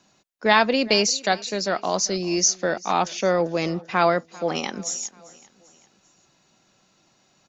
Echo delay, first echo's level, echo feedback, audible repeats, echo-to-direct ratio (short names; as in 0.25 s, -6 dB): 0.393 s, -22.0 dB, 50%, 3, -21.0 dB